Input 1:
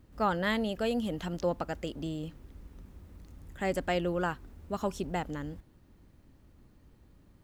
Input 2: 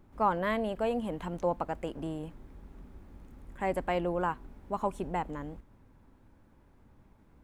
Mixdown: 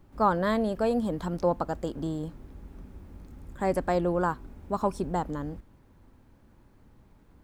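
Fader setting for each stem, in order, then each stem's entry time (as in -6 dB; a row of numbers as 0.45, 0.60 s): -2.5, +1.0 dB; 0.00, 0.00 s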